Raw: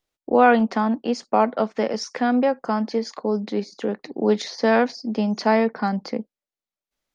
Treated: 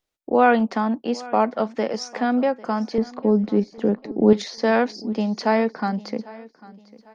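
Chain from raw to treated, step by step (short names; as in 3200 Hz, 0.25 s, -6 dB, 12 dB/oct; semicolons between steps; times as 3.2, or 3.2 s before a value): 2.98–4.33 tilt -3.5 dB/oct; on a send: feedback echo 0.798 s, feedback 34%, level -20.5 dB; on the sum: gain -1 dB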